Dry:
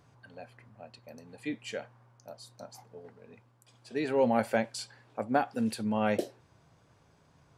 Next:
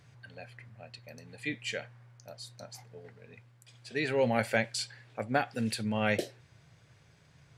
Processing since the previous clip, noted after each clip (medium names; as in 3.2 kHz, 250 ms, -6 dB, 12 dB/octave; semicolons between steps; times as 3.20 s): graphic EQ 125/250/1000/2000/4000/8000 Hz +7/-5/-6/+8/+4/+3 dB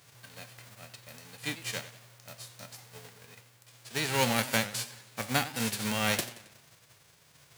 formants flattened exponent 0.3; modulated delay 92 ms, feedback 50%, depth 171 cents, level -15 dB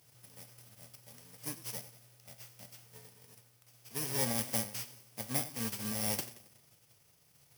bit-reversed sample order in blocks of 32 samples; trim -5.5 dB